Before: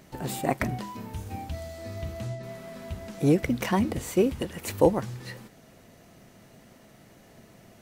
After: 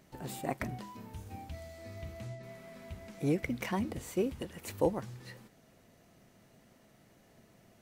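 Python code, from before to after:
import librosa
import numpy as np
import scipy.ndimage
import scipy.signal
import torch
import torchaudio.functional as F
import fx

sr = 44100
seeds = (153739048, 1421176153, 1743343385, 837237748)

y = fx.peak_eq(x, sr, hz=2200.0, db=6.0, octaves=0.3, at=(1.49, 3.72))
y = y * 10.0 ** (-9.0 / 20.0)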